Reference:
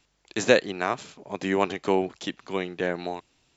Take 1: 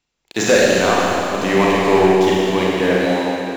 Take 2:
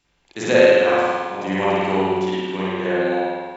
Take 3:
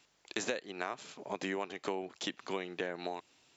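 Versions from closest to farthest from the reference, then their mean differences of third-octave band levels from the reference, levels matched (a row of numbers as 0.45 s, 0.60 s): 3, 2, 1; 5.0 dB, 7.5 dB, 10.0 dB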